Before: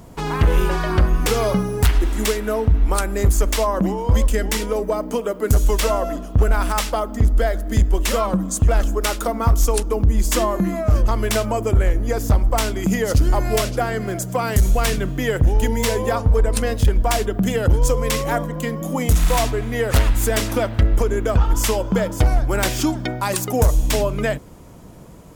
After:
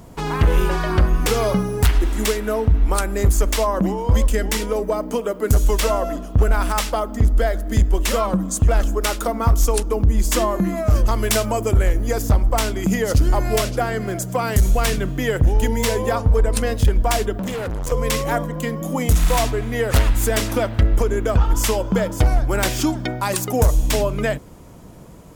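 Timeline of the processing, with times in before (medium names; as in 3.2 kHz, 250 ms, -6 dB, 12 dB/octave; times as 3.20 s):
10.77–12.22 s: treble shelf 4.1 kHz +6 dB
17.39–17.92 s: hard clipper -23.5 dBFS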